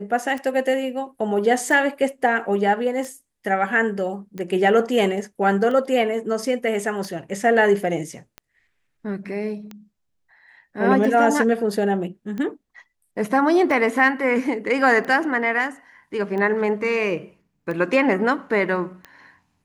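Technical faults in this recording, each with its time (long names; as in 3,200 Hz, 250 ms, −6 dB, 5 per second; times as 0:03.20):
scratch tick 45 rpm −20 dBFS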